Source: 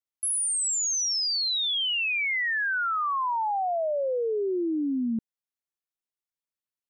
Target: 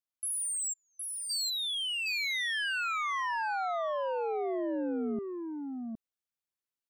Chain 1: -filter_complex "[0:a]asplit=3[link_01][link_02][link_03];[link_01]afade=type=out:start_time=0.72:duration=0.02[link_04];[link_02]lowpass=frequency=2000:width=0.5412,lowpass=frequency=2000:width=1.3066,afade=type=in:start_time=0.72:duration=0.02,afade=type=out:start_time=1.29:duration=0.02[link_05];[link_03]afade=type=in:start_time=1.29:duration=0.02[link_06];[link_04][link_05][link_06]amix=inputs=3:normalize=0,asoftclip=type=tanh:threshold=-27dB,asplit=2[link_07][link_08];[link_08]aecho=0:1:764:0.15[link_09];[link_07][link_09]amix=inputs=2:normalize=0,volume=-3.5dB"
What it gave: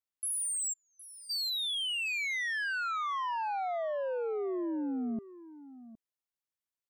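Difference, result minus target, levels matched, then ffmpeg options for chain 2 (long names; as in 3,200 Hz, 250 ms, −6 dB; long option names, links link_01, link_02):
echo-to-direct −12 dB
-filter_complex "[0:a]asplit=3[link_01][link_02][link_03];[link_01]afade=type=out:start_time=0.72:duration=0.02[link_04];[link_02]lowpass=frequency=2000:width=0.5412,lowpass=frequency=2000:width=1.3066,afade=type=in:start_time=0.72:duration=0.02,afade=type=out:start_time=1.29:duration=0.02[link_05];[link_03]afade=type=in:start_time=1.29:duration=0.02[link_06];[link_04][link_05][link_06]amix=inputs=3:normalize=0,asoftclip=type=tanh:threshold=-27dB,asplit=2[link_07][link_08];[link_08]aecho=0:1:764:0.596[link_09];[link_07][link_09]amix=inputs=2:normalize=0,volume=-3.5dB"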